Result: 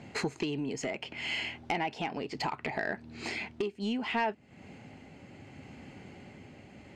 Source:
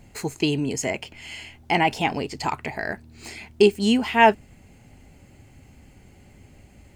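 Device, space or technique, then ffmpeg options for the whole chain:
AM radio: -af "highpass=150,lowpass=4.1k,acompressor=threshold=-33dB:ratio=8,asoftclip=type=tanh:threshold=-26dB,tremolo=f=0.68:d=0.31,volume=6dB"

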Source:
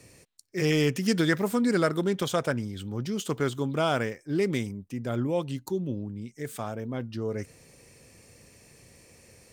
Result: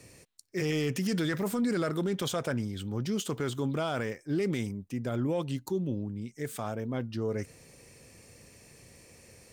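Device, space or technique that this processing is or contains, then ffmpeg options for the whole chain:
soft clipper into limiter: -af "asoftclip=type=tanh:threshold=-13.5dB,alimiter=limit=-22.5dB:level=0:latency=1:release=17"

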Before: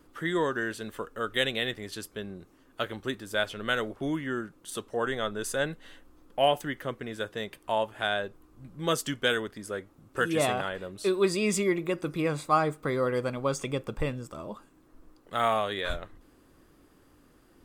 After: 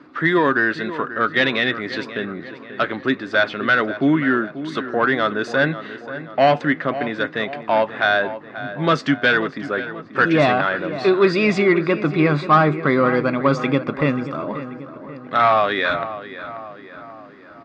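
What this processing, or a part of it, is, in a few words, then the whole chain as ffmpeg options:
overdrive pedal into a guitar cabinet: -filter_complex "[0:a]asplit=2[a][b];[b]highpass=f=720:p=1,volume=15dB,asoftclip=type=tanh:threshold=-11dB[c];[a][c]amix=inputs=2:normalize=0,lowpass=f=4.2k:p=1,volume=-6dB,highpass=110,equalizer=f=150:t=q:w=4:g=9,equalizer=f=270:t=q:w=4:g=8,equalizer=f=480:t=q:w=4:g=-5,equalizer=f=870:t=q:w=4:g=-4,equalizer=f=3.1k:t=q:w=4:g=-10,lowpass=f=4.1k:w=0.5412,lowpass=f=4.1k:w=1.3066,asplit=2[d][e];[e]adelay=536,lowpass=f=2.6k:p=1,volume=-12.5dB,asplit=2[f][g];[g]adelay=536,lowpass=f=2.6k:p=1,volume=0.55,asplit=2[h][i];[i]adelay=536,lowpass=f=2.6k:p=1,volume=0.55,asplit=2[j][k];[k]adelay=536,lowpass=f=2.6k:p=1,volume=0.55,asplit=2[l][m];[m]adelay=536,lowpass=f=2.6k:p=1,volume=0.55,asplit=2[n][o];[o]adelay=536,lowpass=f=2.6k:p=1,volume=0.55[p];[d][f][h][j][l][n][p]amix=inputs=7:normalize=0,volume=7.5dB"

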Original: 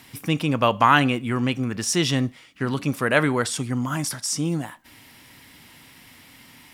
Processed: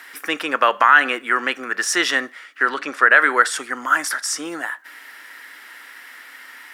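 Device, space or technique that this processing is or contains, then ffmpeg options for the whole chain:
laptop speaker: -filter_complex "[0:a]asettb=1/sr,asplit=3[a][b][c];[a]atrim=end=2.704[d];[b]atrim=start=2.7:end=3.16,asetpts=PTS-STARTPTS,afade=t=in:d=0.004:c=qsin,afade=t=out:st=0.456:d=0.004:c=qsin,lowpass=6.5k[e];[c]atrim=start=3.156[f];[d][e]acrossfade=d=0.004:c1=hsin:c2=qsin[g];[g][f]acrossfade=d=0.004:c1=qsin:c2=hsin,highpass=f=360:w=0.5412,highpass=f=360:w=1.3066,equalizer=f=1.4k:t=o:w=0.56:g=12,equalizer=f=1.8k:t=o:w=0.39:g=10.5,alimiter=limit=-3.5dB:level=0:latency=1:release=120,volume=2dB"

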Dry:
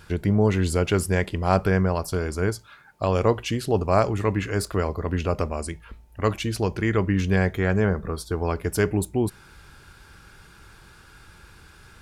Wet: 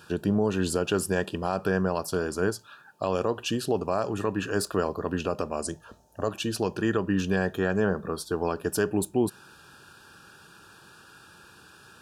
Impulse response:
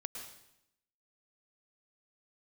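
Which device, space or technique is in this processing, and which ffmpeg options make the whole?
PA system with an anti-feedback notch: -filter_complex "[0:a]asettb=1/sr,asplit=3[a][b][c];[a]atrim=end=5.654[d];[b]atrim=start=5.65:end=6.29,asetpts=PTS-STARTPTS,afade=t=in:d=0.004:c=qsin,afade=t=out:st=0.636:d=0.004:c=qsin,equalizer=f=100:t=o:w=0.67:g=6,equalizer=f=630:t=o:w=0.67:g=9,equalizer=f=2.5k:t=o:w=0.67:g=-9,equalizer=f=6.3k:t=o:w=0.67:g=10[e];[c]atrim=start=6.286[f];[d][e]acrossfade=d=0.004:c1=hsin:c2=qsin[g];[g][f]acrossfade=d=0.004:c1=qsin:c2=hsin,highpass=170,asuperstop=centerf=2100:order=8:qfactor=3.8,alimiter=limit=-13.5dB:level=0:latency=1:release=150"

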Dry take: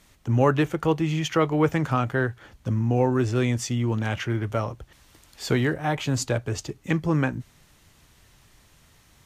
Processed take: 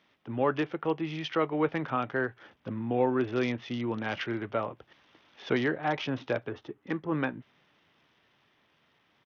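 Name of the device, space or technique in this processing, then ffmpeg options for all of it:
Bluetooth headset: -filter_complex "[0:a]asettb=1/sr,asplit=3[a][b][c];[a]atrim=end=6.494[d];[b]atrim=start=6.49:end=7.12,asetpts=PTS-STARTPTS,afade=t=in:d=0.004:c=qsin,afade=t=out:st=0.626:d=0.004:c=qsin,equalizer=f=160:t=o:w=0.67:g=-5,equalizer=f=630:t=o:w=0.67:g=-5,equalizer=f=2.5k:t=o:w=0.67:g=-9,equalizer=f=6.3k:t=o:w=0.67:g=-11[e];[c]atrim=start=7.116[f];[d][e]acrossfade=d=0.004:c1=hsin:c2=qsin[g];[g][f]acrossfade=d=0.004:c1=qsin:c2=hsin,highpass=230,dynaudnorm=f=320:g=13:m=3.5dB,aresample=8000,aresample=44100,volume=-6dB" -ar 48000 -c:a sbc -b:a 64k

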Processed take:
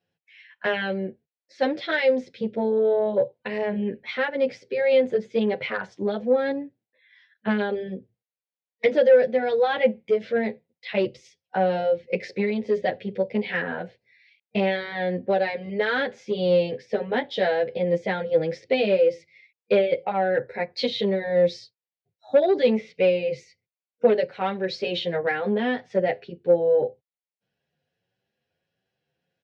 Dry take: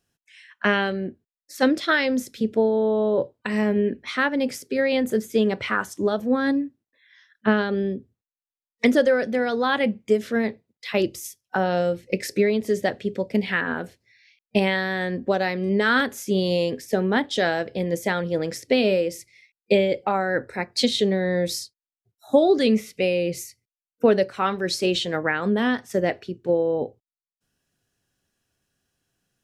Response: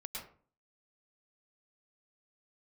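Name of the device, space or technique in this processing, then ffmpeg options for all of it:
barber-pole flanger into a guitar amplifier: -filter_complex "[0:a]asplit=2[a][b];[b]adelay=9.2,afreqshift=1.4[c];[a][c]amix=inputs=2:normalize=1,asoftclip=type=tanh:threshold=-14.5dB,highpass=110,equalizer=f=150:t=q:w=4:g=4,equalizer=f=280:t=q:w=4:g=-7,equalizer=f=510:t=q:w=4:g=9,equalizer=f=760:t=q:w=4:g=4,equalizer=f=1.2k:t=q:w=4:g=-8,equalizer=f=2.2k:t=q:w=4:g=4,lowpass=f=4.3k:w=0.5412,lowpass=f=4.3k:w=1.3066"

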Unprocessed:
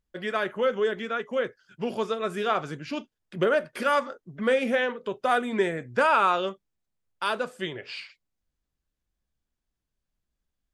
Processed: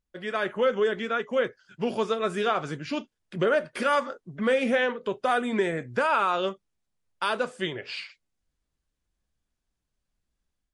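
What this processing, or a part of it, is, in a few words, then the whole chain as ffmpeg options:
low-bitrate web radio: -af "dynaudnorm=f=240:g=3:m=5.5dB,alimiter=limit=-11dB:level=0:latency=1:release=131,volume=-3dB" -ar 24000 -c:a libmp3lame -b:a 48k

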